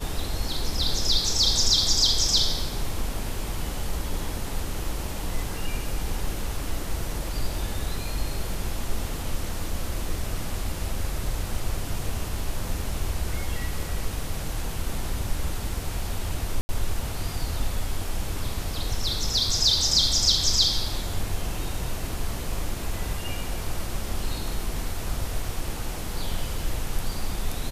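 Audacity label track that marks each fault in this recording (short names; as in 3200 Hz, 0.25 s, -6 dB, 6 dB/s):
16.610000	16.690000	gap 80 ms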